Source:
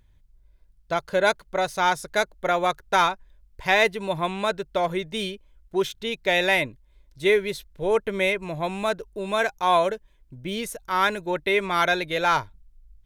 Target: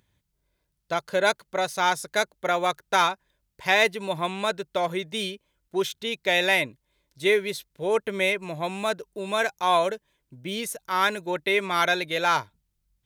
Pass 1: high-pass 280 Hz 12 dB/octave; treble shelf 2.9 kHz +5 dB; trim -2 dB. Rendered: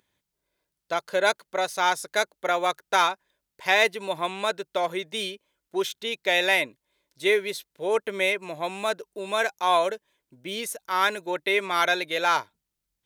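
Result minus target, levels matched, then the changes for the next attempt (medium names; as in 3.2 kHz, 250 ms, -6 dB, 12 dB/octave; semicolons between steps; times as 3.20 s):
125 Hz band -7.5 dB
change: high-pass 120 Hz 12 dB/octave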